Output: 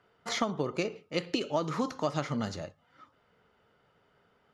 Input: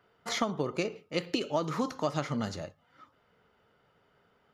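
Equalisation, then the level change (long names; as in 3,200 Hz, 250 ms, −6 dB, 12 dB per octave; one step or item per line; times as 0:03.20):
low-pass filter 9,900 Hz 12 dB per octave
0.0 dB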